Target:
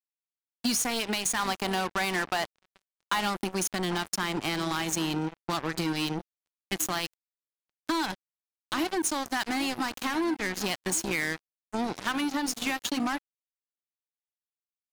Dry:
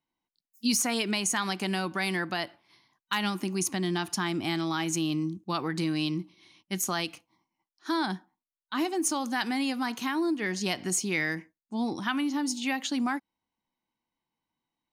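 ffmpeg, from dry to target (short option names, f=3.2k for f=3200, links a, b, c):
-filter_complex "[0:a]asettb=1/sr,asplit=3[a][b][c];[a]atrim=end=1.394[d];[b]atrim=start=1.39:end=3.55,asetpts=PTS-STARTPTS,afade=t=in:d=0.004:c=qsin,afade=t=out:st=2.156:d=0.004:c=qsin,equalizer=f=850:w=1:g=6.5[e];[c]atrim=start=3.546[f];[d][e]acrossfade=d=0.004:c1=hsin:c2=qsin[g];[g][f]acrossfade=d=0.004:c1=qsin:c2=hsin,acontrast=64,highpass=f=200:p=1,asplit=2[h][i];[i]adelay=792,lowpass=f=890:p=1,volume=-13.5dB,asplit=2[j][k];[k]adelay=792,lowpass=f=890:p=1,volume=0.4,asplit=2[l][m];[m]adelay=792,lowpass=f=890:p=1,volume=0.4,asplit=2[n][o];[o]adelay=792,lowpass=f=890:p=1,volume=0.4[p];[h][j][l][n][p]amix=inputs=5:normalize=0,asoftclip=type=tanh:threshold=-22.5dB,acrusher=bits=3:mix=0:aa=0.5,acompressor=threshold=-34dB:ratio=2.5,volume=6.5dB"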